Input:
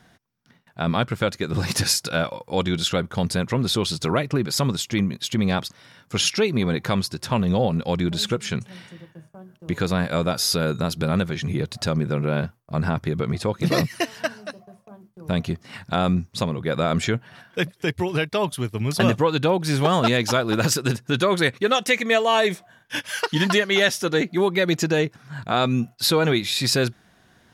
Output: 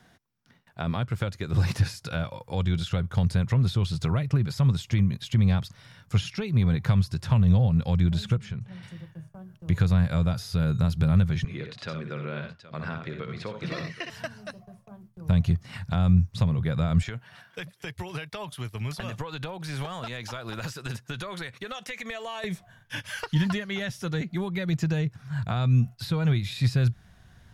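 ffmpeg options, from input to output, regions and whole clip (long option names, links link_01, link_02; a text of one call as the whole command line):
ffmpeg -i in.wav -filter_complex "[0:a]asettb=1/sr,asplit=3[link_01][link_02][link_03];[link_01]atrim=end=8.374[link_04];[link_02]atrim=start=8.37:end=8.83,asetpts=PTS-STARTPTS,afade=type=in:duration=0.004:curve=qsin,afade=type=out:start_time=0.456:duration=0.004:curve=qsin,lowpass=frequency=1600:poles=1,acompressor=threshold=-36dB:ratio=3:attack=3.2:release=140:knee=1:detection=peak[link_05];[link_03]atrim=start=8.826[link_06];[link_04][link_05]acrossfade=duration=0.004:curve1=hsin:curve2=qsin[link_07];[link_07][link_06]acrossfade=duration=0.004:curve1=qsin:curve2=hsin,asettb=1/sr,asplit=3[link_08][link_09][link_10];[link_08]atrim=end=11.444[link_11];[link_09]atrim=start=11.44:end=14.1,asetpts=PTS-STARTPTS,afade=type=in:duration=0.004:curve=qsin,afade=type=out:start_time=2.656:duration=0.004:curve=qsin,highpass=370,lowpass=3800,equalizer=frequency=790:width=1.8:gain=-8.5,aecho=1:1:62|86|772:0.447|0.211|0.141,atrim=end_sample=117306[link_12];[link_10]atrim=start=14.096[link_13];[link_11][link_12]acrossfade=duration=0.004:curve1=hsin:curve2=qsin[link_14];[link_14][link_13]acrossfade=duration=0.004:curve1=qsin:curve2=hsin,asettb=1/sr,asplit=3[link_15][link_16][link_17];[link_15]atrim=end=17.024[link_18];[link_16]atrim=start=17.02:end=22.44,asetpts=PTS-STARTPTS,afade=type=in:duration=0.004:curve=qsin,afade=type=out:start_time=5.416:duration=0.004:curve=qsin,highpass=frequency=500:poles=1,acompressor=threshold=-26dB:ratio=6:attack=3.2:release=140:knee=1:detection=peak[link_19];[link_17]atrim=start=22.436[link_20];[link_18][link_19]acrossfade=duration=0.004:curve1=hsin:curve2=qsin[link_21];[link_21][link_20]acrossfade=duration=0.004:curve1=qsin:curve2=hsin,acrossover=split=190[link_22][link_23];[link_23]acompressor=threshold=-27dB:ratio=4[link_24];[link_22][link_24]amix=inputs=2:normalize=0,asubboost=boost=9:cutoff=100,acrossover=split=3300[link_25][link_26];[link_26]acompressor=threshold=-38dB:ratio=4:attack=1:release=60[link_27];[link_25][link_27]amix=inputs=2:normalize=0,volume=-3dB" out.wav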